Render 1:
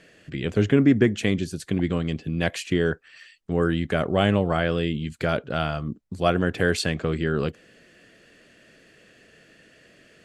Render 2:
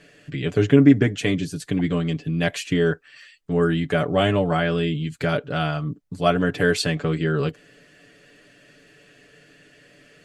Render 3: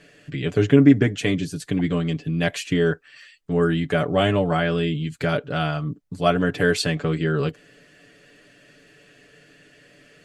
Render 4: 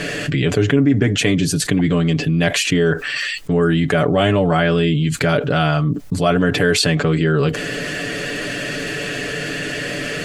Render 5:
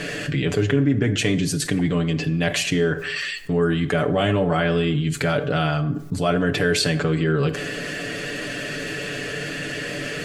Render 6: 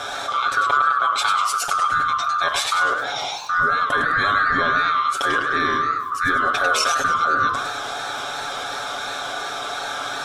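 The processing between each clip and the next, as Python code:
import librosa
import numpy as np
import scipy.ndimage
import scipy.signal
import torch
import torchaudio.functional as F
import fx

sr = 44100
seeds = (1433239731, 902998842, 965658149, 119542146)

y1 = x + 0.75 * np.pad(x, (int(6.9 * sr / 1000.0), 0))[:len(x)]
y2 = y1
y3 = fx.env_flatten(y2, sr, amount_pct=70)
y3 = y3 * librosa.db_to_amplitude(-3.0)
y4 = fx.rev_plate(y3, sr, seeds[0], rt60_s=0.84, hf_ratio=0.6, predelay_ms=0, drr_db=10.5)
y4 = y4 * librosa.db_to_amplitude(-5.0)
y5 = fx.band_swap(y4, sr, width_hz=1000)
y5 = fx.echo_warbled(y5, sr, ms=101, feedback_pct=50, rate_hz=2.8, cents=206, wet_db=-7.0)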